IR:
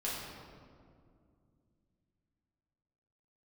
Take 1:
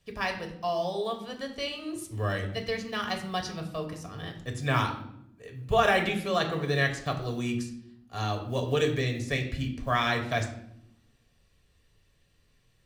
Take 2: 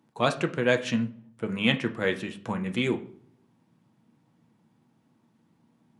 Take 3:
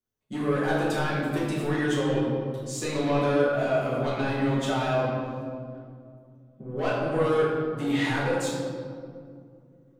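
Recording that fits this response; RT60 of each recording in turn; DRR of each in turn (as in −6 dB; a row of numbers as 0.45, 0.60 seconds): 3; non-exponential decay, 0.50 s, 2.3 s; 3.0, 5.0, −7.5 decibels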